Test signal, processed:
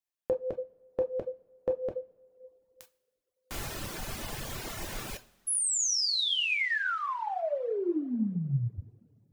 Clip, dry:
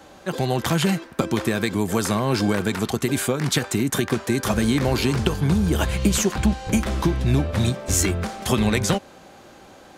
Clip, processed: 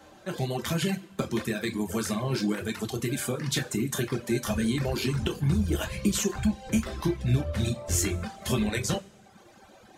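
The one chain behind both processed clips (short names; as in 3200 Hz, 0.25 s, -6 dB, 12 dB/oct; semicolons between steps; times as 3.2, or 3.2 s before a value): dynamic EQ 910 Hz, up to -5 dB, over -35 dBFS, Q 1.2; two-slope reverb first 0.48 s, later 2.5 s, from -18 dB, DRR 1.5 dB; reverb removal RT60 1 s; gain -7 dB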